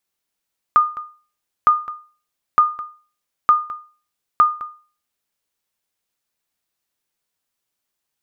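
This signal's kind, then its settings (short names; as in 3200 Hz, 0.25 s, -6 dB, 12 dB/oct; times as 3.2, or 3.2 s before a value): sonar ping 1220 Hz, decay 0.38 s, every 0.91 s, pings 5, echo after 0.21 s, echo -17.5 dB -5 dBFS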